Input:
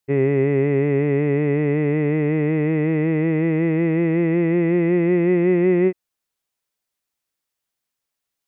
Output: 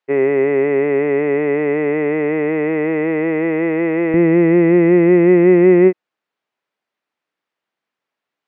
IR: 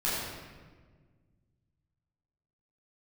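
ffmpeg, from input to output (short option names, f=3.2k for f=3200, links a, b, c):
-af "asetnsamples=n=441:p=0,asendcmd='4.14 highpass f 210',highpass=420,lowpass=2.4k,volume=8dB"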